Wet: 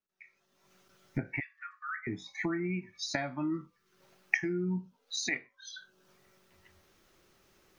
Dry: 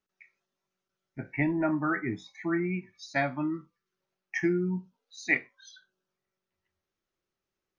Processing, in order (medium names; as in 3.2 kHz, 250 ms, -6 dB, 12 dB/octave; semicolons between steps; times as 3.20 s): recorder AGC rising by 41 dB/s; 1.40–2.07 s: brick-wall FIR high-pass 1.1 kHz; trim -8.5 dB